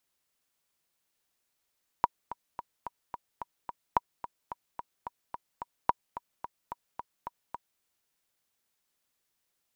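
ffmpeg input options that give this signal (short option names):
-f lavfi -i "aevalsrc='pow(10,(-9-14.5*gte(mod(t,7*60/218),60/218))/20)*sin(2*PI*960*mod(t,60/218))*exp(-6.91*mod(t,60/218)/0.03)':d=5.77:s=44100"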